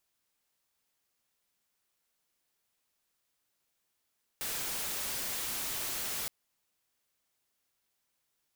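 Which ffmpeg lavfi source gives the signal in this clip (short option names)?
-f lavfi -i "anoisesrc=c=white:a=0.0274:d=1.87:r=44100:seed=1"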